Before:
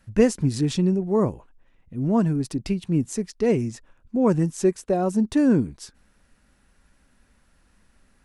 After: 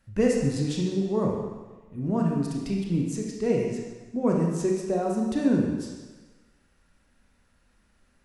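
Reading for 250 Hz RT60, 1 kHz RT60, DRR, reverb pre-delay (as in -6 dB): 1.2 s, 1.3 s, -1.0 dB, 24 ms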